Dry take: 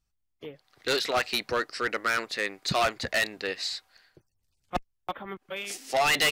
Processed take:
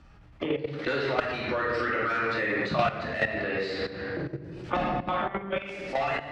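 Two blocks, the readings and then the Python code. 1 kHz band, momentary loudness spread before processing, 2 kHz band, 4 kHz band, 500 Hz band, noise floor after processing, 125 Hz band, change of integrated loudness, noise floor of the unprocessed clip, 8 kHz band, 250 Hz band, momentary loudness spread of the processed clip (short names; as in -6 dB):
+1.0 dB, 13 LU, -0.5 dB, -9.5 dB, +2.5 dB, -52 dBFS, +7.0 dB, -0.5 dB, -77 dBFS, under -20 dB, +6.5 dB, 7 LU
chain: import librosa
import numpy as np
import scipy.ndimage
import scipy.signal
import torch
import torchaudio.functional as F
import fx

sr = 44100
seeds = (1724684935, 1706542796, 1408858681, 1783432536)

y = fx.fade_out_tail(x, sr, length_s=1.63)
y = scipy.signal.sosfilt(scipy.signal.butter(2, 51.0, 'highpass', fs=sr, output='sos'), y)
y = fx.hum_notches(y, sr, base_hz=50, count=4)
y = fx.room_shoebox(y, sr, seeds[0], volume_m3=400.0, walls='mixed', distance_m=2.5)
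y = fx.level_steps(y, sr, step_db=18)
y = fx.transient(y, sr, attack_db=-4, sustain_db=4)
y = scipy.signal.sosfilt(scipy.signal.butter(2, 2000.0, 'lowpass', fs=sr, output='sos'), y)
y = fx.band_squash(y, sr, depth_pct=100)
y = y * librosa.db_to_amplitude(8.5)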